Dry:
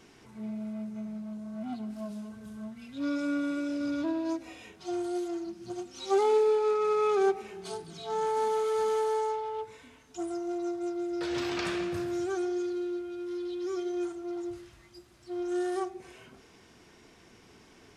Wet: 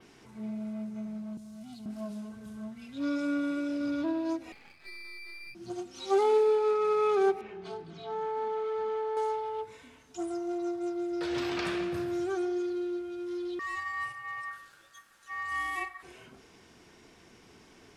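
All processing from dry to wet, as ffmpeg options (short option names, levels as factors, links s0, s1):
-filter_complex "[0:a]asettb=1/sr,asplit=3[s0][s1][s2];[s0]atrim=end=1.374[s3];[s1]atrim=start=1.37:end=1.86,asetpts=PTS-STARTPTS,afade=t=in:d=0.004:c=qsin,afade=t=out:st=0.486:d=0.004:c=qsin,highshelf=f=4100:g=8.5,acrossover=split=160|3000[s4][s5][s6];[s5]acompressor=threshold=0.001:ratio=2:attack=3.2:release=140:knee=2.83:detection=peak[s7];[s4][s7][s6]amix=inputs=3:normalize=0[s8];[s2]atrim=start=1.856[s9];[s3][s8]acrossfade=d=0.004:c1=hsin:c2=qsin[s10];[s10][s9]acrossfade=d=0.004:c1=qsin:c2=hsin,asettb=1/sr,asplit=3[s11][s12][s13];[s11]atrim=end=4.524[s14];[s12]atrim=start=4.52:end=5.55,asetpts=PTS-STARTPTS,afade=t=in:d=0.004:c=qsin,afade=t=out:st=1.026:d=0.004:c=qsin,lowpass=f=2300:t=q:w=0.5098,lowpass=f=2300:t=q:w=0.6013,lowpass=f=2300:t=q:w=0.9,lowpass=f=2300:t=q:w=2.563,afreqshift=-2700,acompressor=threshold=0.0126:ratio=12:attack=3.2:release=140:knee=1:detection=peak,aeval=exprs='max(val(0),0)':c=same[s15];[s13]atrim=start=5.546[s16];[s14][s15]acrossfade=d=0.004:c1=hsin:c2=qsin[s17];[s17][s16]acrossfade=d=0.004:c1=qsin:c2=hsin,asettb=1/sr,asplit=3[s18][s19][s20];[s18]atrim=end=7.414[s21];[s19]atrim=start=7.41:end=9.17,asetpts=PTS-STARTPTS,afade=t=in:d=0.004:c=qsin,afade=t=out:st=1.756:d=0.004:c=qsin,lowpass=2900,acompressor=threshold=0.0141:ratio=1.5:attack=3.2:release=140:knee=1:detection=peak[s22];[s20]atrim=start=9.166[s23];[s21][s22]acrossfade=d=0.004:c1=hsin:c2=qsin[s24];[s24][s23]acrossfade=d=0.004:c1=qsin:c2=hsin,asettb=1/sr,asplit=3[s25][s26][s27];[s25]atrim=end=13.594[s28];[s26]atrim=start=13.59:end=16.03,asetpts=PTS-STARTPTS,afade=t=in:d=0.004:c=qsin,afade=t=out:st=2.436:d=0.004:c=qsin,highshelf=f=8200:g=8.5,aeval=exprs='val(0)*sin(2*PI*1500*n/s)':c=same[s29];[s27]atrim=start=16.026[s30];[s28][s29]acrossfade=d=0.004:c1=hsin:c2=qsin[s31];[s31][s30]acrossfade=d=0.004:c1=qsin:c2=hsin,bandreject=f=50:t=h:w=6,bandreject=f=100:t=h:w=6,adynamicequalizer=threshold=0.001:dfrequency=6900:dqfactor=1.4:tfrequency=6900:tqfactor=1.4:attack=5:release=100:ratio=0.375:range=3:mode=cutabove:tftype=bell"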